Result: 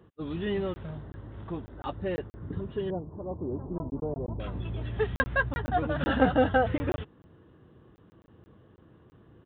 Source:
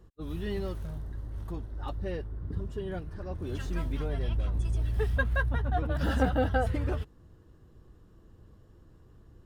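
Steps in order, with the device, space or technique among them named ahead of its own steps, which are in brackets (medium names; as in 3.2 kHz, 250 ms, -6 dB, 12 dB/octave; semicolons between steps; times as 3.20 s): call with lost packets (high-pass 130 Hz 12 dB/octave; resampled via 8 kHz; lost packets of 20 ms random); 2.90–4.40 s: elliptic low-pass 1 kHz, stop band 60 dB; trim +5 dB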